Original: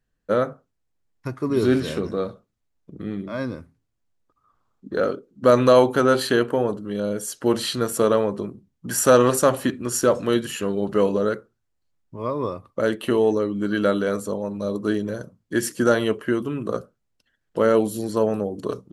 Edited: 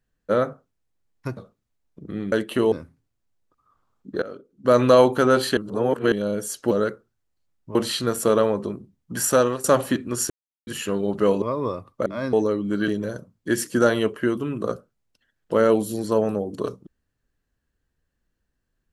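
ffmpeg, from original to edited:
ffmpeg -i in.wav -filter_complex "[0:a]asplit=16[link_01][link_02][link_03][link_04][link_05][link_06][link_07][link_08][link_09][link_10][link_11][link_12][link_13][link_14][link_15][link_16];[link_01]atrim=end=1.372[link_17];[link_02]atrim=start=2.278:end=3.232[link_18];[link_03]atrim=start=12.838:end=13.242[link_19];[link_04]atrim=start=3.498:end=5,asetpts=PTS-STARTPTS,afade=type=out:start_time=1.498:duration=0.004:curve=hsin:silence=0.112202[link_20];[link_05]atrim=start=5:end=6.352,asetpts=PTS-STARTPTS,afade=type=in:duration=0.62:silence=0.112202[link_21];[link_06]atrim=start=6.348:end=6.902,asetpts=PTS-STARTPTS,areverse[link_22];[link_07]atrim=start=6.898:end=7.492[link_23];[link_08]atrim=start=11.158:end=12.202[link_24];[link_09]atrim=start=7.488:end=9.38,asetpts=PTS-STARTPTS,afade=type=out:start_time=1.472:duration=0.42:silence=0.141254[link_25];[link_10]atrim=start=9.38:end=10.04,asetpts=PTS-STARTPTS,afade=type=in:duration=0.004:curve=hsin:silence=0.141254,afade=type=out:start_time=0.656:duration=0.004:curve=hsin[link_26];[link_11]atrim=start=10.04:end=10.41,asetpts=PTS-STARTPTS,volume=0[link_27];[link_12]atrim=start=10.41:end=11.162,asetpts=PTS-STARTPTS,afade=type=in:duration=0.004:curve=hsin[link_28];[link_13]atrim=start=12.198:end=12.842[link_29];[link_14]atrim=start=3.228:end=3.502[link_30];[link_15]atrim=start=13.238:end=13.792[link_31];[link_16]atrim=start=14.928[link_32];[link_17][link_18]acrossfade=duration=0.004:curve1=hsin:curve2=hsin[link_33];[link_33][link_19]acrossfade=duration=0.004:curve1=hsin:curve2=hsin[link_34];[link_20][link_21]concat=n=2:v=0:a=1[link_35];[link_34][link_35]acrossfade=duration=0.004:curve1=hsin:curve2=hsin[link_36];[link_36][link_22]acrossfade=duration=0.004:curve1=hsin:curve2=hsin[link_37];[link_37][link_23]acrossfade=duration=0.004:curve1=hsin:curve2=hsin[link_38];[link_38][link_24]acrossfade=duration=0.004:curve1=hsin:curve2=hsin[link_39];[link_25][link_26][link_27][link_28]concat=n=4:v=0:a=1[link_40];[link_39][link_40]acrossfade=duration=0.004:curve1=hsin:curve2=hsin[link_41];[link_41][link_29]acrossfade=duration=0.004:curve1=hsin:curve2=hsin[link_42];[link_42][link_30]acrossfade=duration=0.004:curve1=hsin:curve2=hsin[link_43];[link_43][link_31]acrossfade=duration=0.004:curve1=hsin:curve2=hsin[link_44];[link_44][link_32]acrossfade=duration=0.004:curve1=hsin:curve2=hsin" out.wav

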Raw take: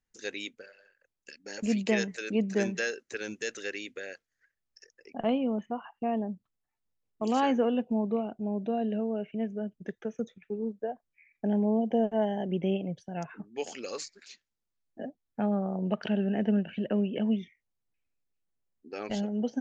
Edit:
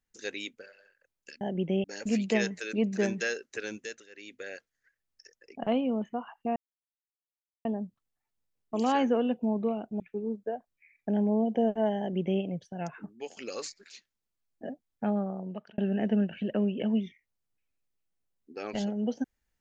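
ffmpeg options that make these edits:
ffmpeg -i in.wav -filter_complex "[0:a]asplit=8[link_01][link_02][link_03][link_04][link_05][link_06][link_07][link_08];[link_01]atrim=end=1.412[link_09];[link_02]atrim=start=12.348:end=12.782[link_10];[link_03]atrim=start=1.408:end=3.66,asetpts=PTS-STARTPTS,afade=type=out:start_time=1.832:duration=0.42:silence=0.0891251[link_11];[link_04]atrim=start=3.66:end=6.13,asetpts=PTS-STARTPTS,afade=type=in:duration=0.42:silence=0.0891251,afade=type=out:start_time=2.466:duration=0.004:curve=hsin,apad=pad_dur=1.09[link_12];[link_05]atrim=start=6.13:end=8.482,asetpts=PTS-STARTPTS,afade=type=in:duration=0.004:curve=hsin[link_13];[link_06]atrim=start=10.358:end=13.73,asetpts=PTS-STARTPTS,afade=type=out:start_time=3.102:duration=0.27:silence=0.149624[link_14];[link_07]atrim=start=13.73:end=16.14,asetpts=PTS-STARTPTS,afade=type=in:duration=0.004:curve=hsin:silence=0.149624,afade=type=out:start_time=1.72:duration=0.69[link_15];[link_08]atrim=start=16.14,asetpts=PTS-STARTPTS,afade=type=in:duration=0.004:curve=hsin[link_16];[link_09][link_10]acrossfade=duration=0.004:curve1=hsin:curve2=hsin[link_17];[link_11][link_12][link_13]concat=n=3:v=0:a=1[link_18];[link_17][link_18]acrossfade=duration=0.004:curve1=hsin:curve2=hsin[link_19];[link_14][link_15][link_16]concat=n=3:v=0:a=1[link_20];[link_19][link_20]acrossfade=duration=0.004:curve1=hsin:curve2=hsin" out.wav

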